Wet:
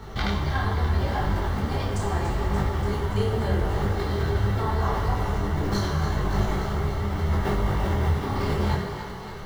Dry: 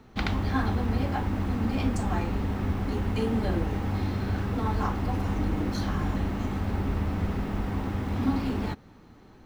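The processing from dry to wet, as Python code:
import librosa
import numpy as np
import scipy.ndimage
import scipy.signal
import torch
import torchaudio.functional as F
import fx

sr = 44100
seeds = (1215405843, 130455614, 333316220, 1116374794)

p1 = fx.peak_eq(x, sr, hz=260.0, db=-11.5, octaves=0.63)
p2 = fx.notch(p1, sr, hz=2500.0, q=5.7)
p3 = fx.over_compress(p2, sr, threshold_db=-36.0, ratio=-0.5)
p4 = p2 + (p3 * librosa.db_to_amplitude(3.0))
p5 = fx.echo_thinned(p4, sr, ms=289, feedback_pct=77, hz=370.0, wet_db=-10.5)
p6 = fx.rev_fdn(p5, sr, rt60_s=1.5, lf_ratio=1.0, hf_ratio=0.8, size_ms=15.0, drr_db=1.0)
p7 = fx.detune_double(p6, sr, cents=27)
y = p7 * librosa.db_to_amplitude(3.0)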